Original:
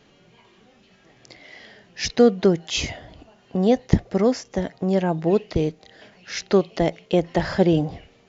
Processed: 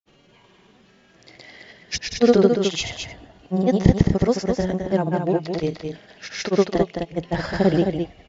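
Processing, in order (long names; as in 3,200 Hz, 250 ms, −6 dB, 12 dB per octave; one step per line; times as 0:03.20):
granular cloud, pitch spread up and down by 0 semitones
single-tap delay 214 ms −6 dB
level +1 dB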